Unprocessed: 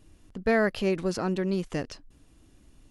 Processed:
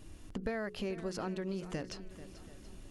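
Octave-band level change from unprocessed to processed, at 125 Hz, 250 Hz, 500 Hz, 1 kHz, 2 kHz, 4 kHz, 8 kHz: -9.5, -10.5, -11.5, -11.0, -13.0, -7.0, -6.5 dB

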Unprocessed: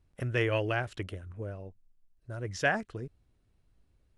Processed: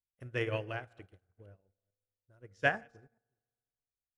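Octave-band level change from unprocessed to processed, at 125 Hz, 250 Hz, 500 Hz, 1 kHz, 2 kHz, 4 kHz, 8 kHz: -9.0 dB, -8.0 dB, -5.5 dB, -4.0 dB, -3.0 dB, -5.5 dB, under -15 dB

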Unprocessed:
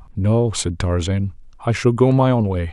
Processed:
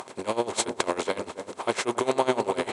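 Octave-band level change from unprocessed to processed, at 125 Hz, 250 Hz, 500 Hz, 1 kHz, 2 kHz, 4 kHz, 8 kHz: -27.5, -13.0, -6.5, -2.5, -2.0, -3.0, -3.0 dB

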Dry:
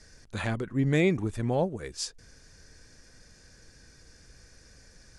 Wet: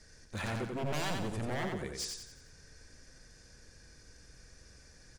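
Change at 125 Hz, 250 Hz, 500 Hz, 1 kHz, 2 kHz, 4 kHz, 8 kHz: -9.5, -10.5, -9.5, -2.0, -5.0, -1.5, -2.0 dB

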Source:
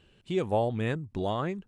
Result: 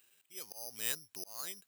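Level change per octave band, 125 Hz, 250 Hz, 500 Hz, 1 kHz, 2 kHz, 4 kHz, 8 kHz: -32.0 dB, -27.0 dB, -25.5 dB, -22.5 dB, -7.5 dB, -0.5 dB, n/a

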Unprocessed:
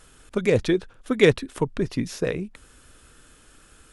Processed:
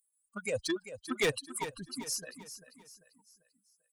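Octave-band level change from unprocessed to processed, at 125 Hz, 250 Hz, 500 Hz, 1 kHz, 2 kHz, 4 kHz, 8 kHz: -19.0, -15.0, -14.5, -5.5, -8.5, -5.0, +2.5 dB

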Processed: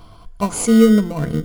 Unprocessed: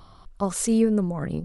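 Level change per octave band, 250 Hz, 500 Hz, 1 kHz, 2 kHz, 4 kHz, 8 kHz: +9.0, +7.5, +7.0, +12.0, +10.0, +4.5 dB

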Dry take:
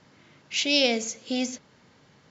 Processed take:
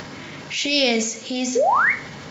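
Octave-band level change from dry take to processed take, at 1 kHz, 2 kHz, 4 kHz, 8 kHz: +19.0 dB, +10.5 dB, +3.0 dB, n/a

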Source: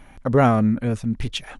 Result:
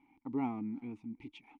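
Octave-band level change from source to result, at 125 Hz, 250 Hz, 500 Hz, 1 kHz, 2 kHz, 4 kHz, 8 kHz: -27.5 dB, -16.0 dB, -26.0 dB, -20.5 dB, -23.5 dB, under -25 dB, n/a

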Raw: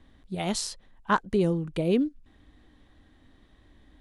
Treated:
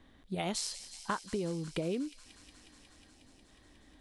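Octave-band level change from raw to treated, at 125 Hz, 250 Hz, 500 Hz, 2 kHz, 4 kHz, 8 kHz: -9.5, -10.0, -9.5, -9.0, -4.0, -3.5 dB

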